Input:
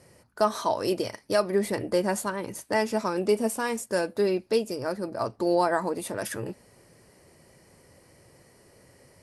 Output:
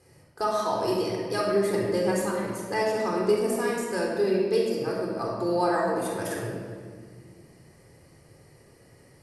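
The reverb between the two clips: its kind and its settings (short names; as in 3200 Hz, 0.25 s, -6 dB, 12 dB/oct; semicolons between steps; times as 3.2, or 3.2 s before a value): shoebox room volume 2600 m³, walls mixed, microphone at 3.9 m; gain -6 dB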